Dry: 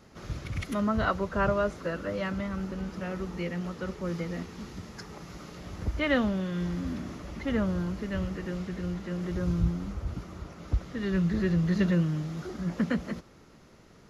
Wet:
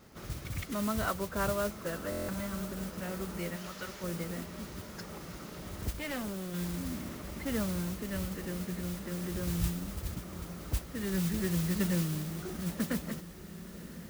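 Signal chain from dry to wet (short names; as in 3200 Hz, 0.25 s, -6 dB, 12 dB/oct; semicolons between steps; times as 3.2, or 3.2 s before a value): 3.56–4.04 tilt shelf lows -9 dB, about 1100 Hz; 5.93–6.54 tube stage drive 30 dB, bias 0.75; in parallel at -1.5 dB: compressor, threshold -38 dBFS, peak gain reduction 17 dB; on the sum: modulation noise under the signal 11 dB; diffused feedback echo 1.009 s, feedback 72%, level -15 dB; stuck buffer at 2.1, samples 1024, times 7; gain -7 dB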